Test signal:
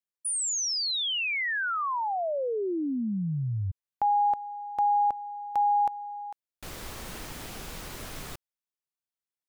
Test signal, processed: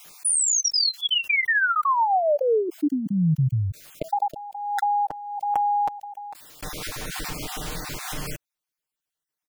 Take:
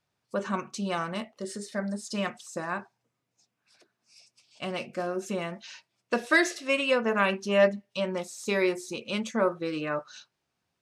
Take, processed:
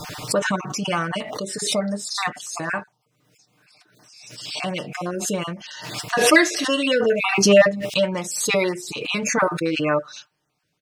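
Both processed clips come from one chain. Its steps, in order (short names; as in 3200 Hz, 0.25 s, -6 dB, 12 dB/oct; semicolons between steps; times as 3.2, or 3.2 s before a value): random spectral dropouts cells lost 25%; comb 6.6 ms, depth 59%; backwards sustainer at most 46 dB/s; gain +6.5 dB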